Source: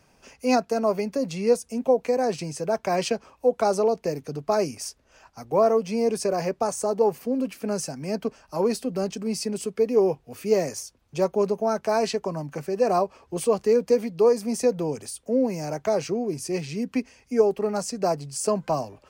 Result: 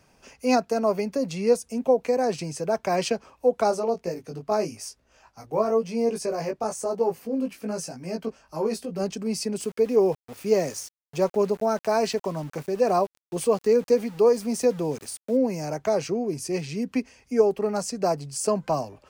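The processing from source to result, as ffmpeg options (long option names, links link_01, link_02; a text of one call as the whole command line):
ffmpeg -i in.wav -filter_complex "[0:a]asplit=3[link_01][link_02][link_03];[link_01]afade=type=out:start_time=3.7:duration=0.02[link_04];[link_02]flanger=delay=17:depth=2:speed=1,afade=type=in:start_time=3.7:duration=0.02,afade=type=out:start_time=8.99:duration=0.02[link_05];[link_03]afade=type=in:start_time=8.99:duration=0.02[link_06];[link_04][link_05][link_06]amix=inputs=3:normalize=0,asettb=1/sr,asplit=3[link_07][link_08][link_09];[link_07]atrim=end=9.604[link_10];[link_08]atrim=start=9.6:end=15.37,asetpts=PTS-STARTPTS,afade=type=in:duration=0.004:curve=qsin,afade=type=out:start_time=5.766:duration=0.004:curve=qsin,aeval=exprs='val(0)*gte(abs(val(0)),0.00841)':channel_layout=same[link_11];[link_09]atrim=start=15.366[link_12];[link_10][link_11]acrossfade=duration=0.004:curve1=hsin:curve2=qsin[link_13];[link_13][link_12]acrossfade=duration=0.004:curve1=qsin:curve2=hsin" out.wav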